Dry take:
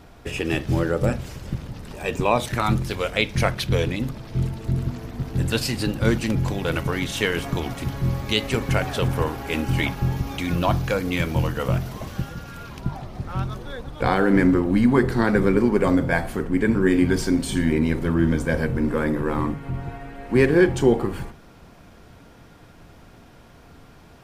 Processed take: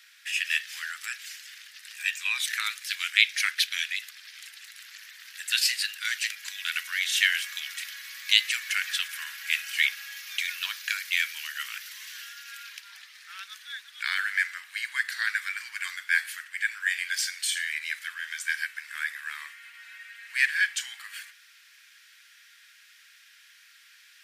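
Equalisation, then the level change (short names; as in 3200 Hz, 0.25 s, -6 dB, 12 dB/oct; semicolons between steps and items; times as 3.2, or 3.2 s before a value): elliptic high-pass 1700 Hz, stop band 70 dB; +4.5 dB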